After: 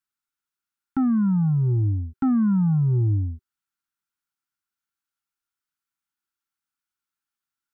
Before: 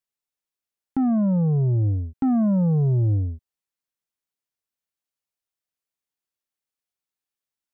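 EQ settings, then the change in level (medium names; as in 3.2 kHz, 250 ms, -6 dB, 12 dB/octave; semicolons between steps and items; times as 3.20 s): Chebyshev band-stop 380–790 Hz, order 4; peaking EQ 1.4 kHz +12.5 dB 0.29 oct; 0.0 dB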